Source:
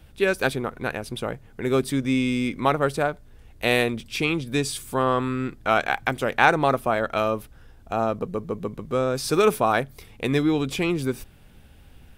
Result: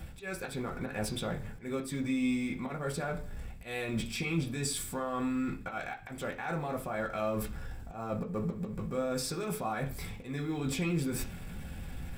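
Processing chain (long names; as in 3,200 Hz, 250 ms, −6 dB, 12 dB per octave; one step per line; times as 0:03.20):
mu-law and A-law mismatch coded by mu
high-shelf EQ 11,000 Hz +3.5 dB
reversed playback
downward compressor 6 to 1, threshold −28 dBFS, peak gain reduction 16 dB
reversed playback
volume swells 172 ms
brickwall limiter −27 dBFS, peak gain reduction 10.5 dB
convolution reverb RT60 0.45 s, pre-delay 3 ms, DRR −1.5 dB
level −2 dB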